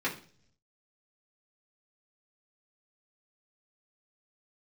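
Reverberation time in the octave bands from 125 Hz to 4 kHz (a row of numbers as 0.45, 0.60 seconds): 1.0, 0.75, 0.55, 0.40, 0.40, 0.55 seconds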